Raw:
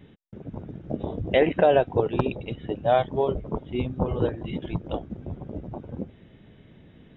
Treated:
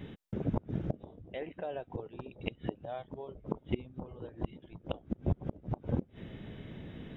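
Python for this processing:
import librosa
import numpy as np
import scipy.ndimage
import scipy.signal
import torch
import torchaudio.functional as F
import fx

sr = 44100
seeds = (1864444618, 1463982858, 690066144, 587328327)

y = fx.gate_flip(x, sr, shuts_db=-24.0, range_db=-26)
y = y * librosa.db_to_amplitude(5.5)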